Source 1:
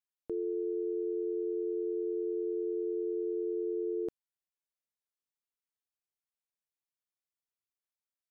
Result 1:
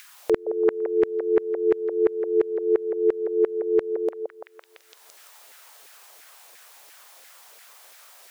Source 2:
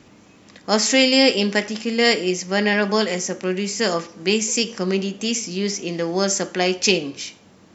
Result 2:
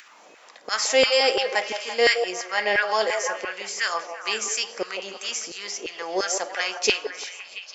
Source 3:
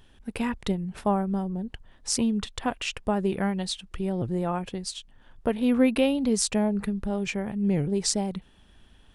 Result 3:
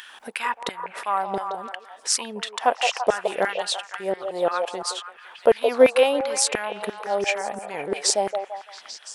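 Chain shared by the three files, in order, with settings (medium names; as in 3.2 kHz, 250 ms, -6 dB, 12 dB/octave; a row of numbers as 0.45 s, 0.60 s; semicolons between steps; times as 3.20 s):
LFO high-pass saw down 2.9 Hz 440–1800 Hz; repeats whose band climbs or falls 169 ms, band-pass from 610 Hz, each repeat 0.7 oct, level -4 dB; upward compressor, threshold -38 dBFS; normalise loudness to -24 LUFS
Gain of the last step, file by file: +13.0 dB, -4.5 dB, +5.0 dB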